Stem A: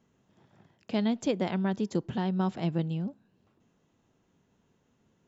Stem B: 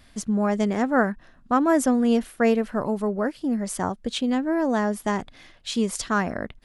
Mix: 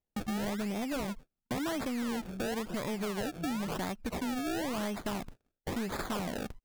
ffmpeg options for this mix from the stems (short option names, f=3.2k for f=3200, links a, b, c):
-filter_complex "[0:a]aemphasis=mode=reproduction:type=bsi,adelay=750,volume=-10.5dB[a];[1:a]acompressor=threshold=-25dB:ratio=6,acrusher=samples=30:mix=1:aa=0.000001:lfo=1:lforange=30:lforate=0.96,volume=2dB,asplit=2[b][c];[c]apad=whole_len=265852[d];[a][d]sidechaincompress=threshold=-33dB:ratio=8:attack=16:release=695[e];[e][b]amix=inputs=2:normalize=0,agate=range=-39dB:threshold=-41dB:ratio=16:detection=peak,asoftclip=type=tanh:threshold=-27dB,acompressor=threshold=-32dB:ratio=6"